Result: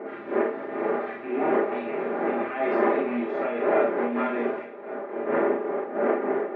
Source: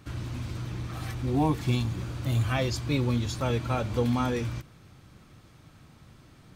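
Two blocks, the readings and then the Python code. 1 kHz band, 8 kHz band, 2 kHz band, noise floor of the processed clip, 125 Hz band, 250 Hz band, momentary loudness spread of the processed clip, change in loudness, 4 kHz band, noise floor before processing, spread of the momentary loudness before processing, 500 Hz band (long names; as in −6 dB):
+7.5 dB, below −30 dB, +7.0 dB, −38 dBFS, below −20 dB, +2.5 dB, 7 LU, +2.5 dB, below −10 dB, −55 dBFS, 9 LU, +11.0 dB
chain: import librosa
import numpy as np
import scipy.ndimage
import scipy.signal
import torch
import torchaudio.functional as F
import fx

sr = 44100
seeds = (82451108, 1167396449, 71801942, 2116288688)

p1 = fx.rattle_buzz(x, sr, strikes_db=-27.0, level_db=-30.0)
p2 = fx.dmg_wind(p1, sr, seeds[0], corner_hz=490.0, level_db=-27.0)
p3 = fx.rider(p2, sr, range_db=4, speed_s=0.5)
p4 = p2 + (p3 * librosa.db_to_amplitude(2.5))
p5 = 10.0 ** (-16.0 / 20.0) * np.tanh(p4 / 10.0 ** (-16.0 / 20.0))
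p6 = scipy.signal.sosfilt(scipy.signal.cheby1(3, 1.0, [310.0, 2000.0], 'bandpass', fs=sr, output='sos'), p5)
p7 = fx.peak_eq(p6, sr, hz=1000.0, db=-4.5, octaves=0.48)
p8 = p7 + 0.71 * np.pad(p7, (int(5.0 * sr / 1000.0), 0))[:len(p7)]
p9 = p8 + fx.echo_single(p8, sr, ms=1113, db=-17.0, dry=0)
p10 = fx.rev_schroeder(p9, sr, rt60_s=0.31, comb_ms=26, drr_db=-2.5)
p11 = fx.am_noise(p10, sr, seeds[1], hz=5.7, depth_pct=65)
y = p11 * librosa.db_to_amplitude(-2.0)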